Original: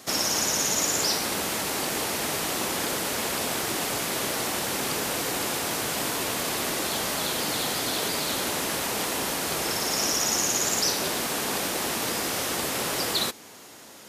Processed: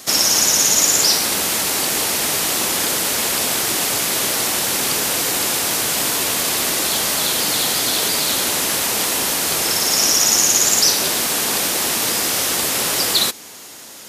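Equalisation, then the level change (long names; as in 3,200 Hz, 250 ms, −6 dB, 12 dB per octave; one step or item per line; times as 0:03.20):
high-shelf EQ 2,500 Hz +8 dB
+4.0 dB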